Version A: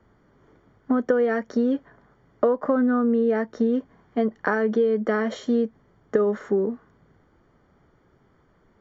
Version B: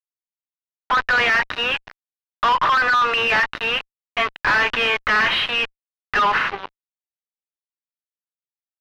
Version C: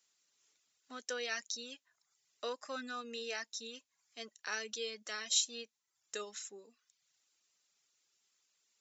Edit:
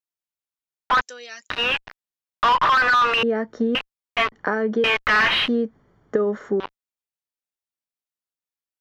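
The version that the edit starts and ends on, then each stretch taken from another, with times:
B
0:01.01–0:01.50: punch in from C
0:03.23–0:03.75: punch in from A
0:04.32–0:04.84: punch in from A
0:05.48–0:06.60: punch in from A

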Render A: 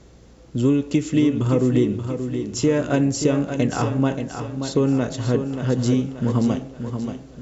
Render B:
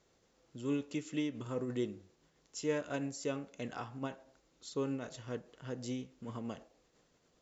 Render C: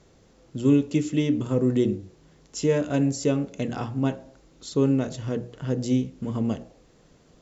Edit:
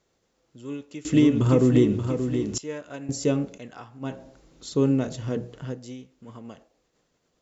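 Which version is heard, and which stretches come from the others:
B
0:01.05–0:02.58: punch in from A
0:03.09–0:03.58: punch in from C
0:04.11–0:05.68: punch in from C, crossfade 0.24 s

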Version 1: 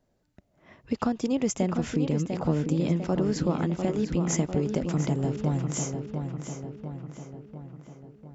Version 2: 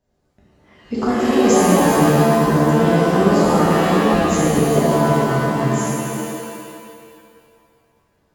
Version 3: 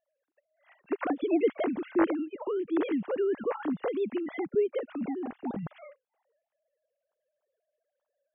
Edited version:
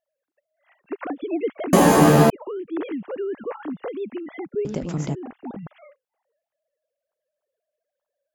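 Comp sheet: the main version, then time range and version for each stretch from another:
3
0:01.73–0:02.30: punch in from 2
0:04.65–0:05.15: punch in from 1

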